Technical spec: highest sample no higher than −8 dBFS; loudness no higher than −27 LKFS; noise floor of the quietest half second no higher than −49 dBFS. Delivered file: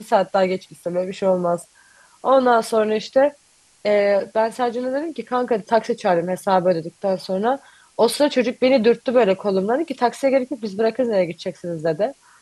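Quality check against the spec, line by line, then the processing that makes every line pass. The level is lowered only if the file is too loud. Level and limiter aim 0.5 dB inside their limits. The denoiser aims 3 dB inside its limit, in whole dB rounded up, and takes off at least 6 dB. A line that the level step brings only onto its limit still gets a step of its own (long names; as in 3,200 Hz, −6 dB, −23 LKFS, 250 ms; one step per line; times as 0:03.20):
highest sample −4.5 dBFS: out of spec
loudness −20.5 LKFS: out of spec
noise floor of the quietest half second −56 dBFS: in spec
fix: level −7 dB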